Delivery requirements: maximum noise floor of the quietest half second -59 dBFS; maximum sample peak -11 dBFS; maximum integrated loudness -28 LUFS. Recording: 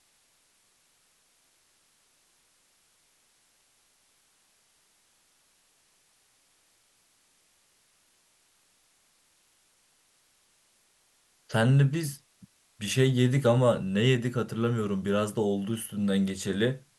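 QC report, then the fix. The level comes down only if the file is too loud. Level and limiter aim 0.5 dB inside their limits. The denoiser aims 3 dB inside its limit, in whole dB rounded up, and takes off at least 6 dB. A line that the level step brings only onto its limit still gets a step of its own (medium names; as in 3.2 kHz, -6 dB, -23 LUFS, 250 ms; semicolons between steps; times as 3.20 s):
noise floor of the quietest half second -67 dBFS: pass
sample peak -10.0 dBFS: fail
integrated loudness -26.5 LUFS: fail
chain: trim -2 dB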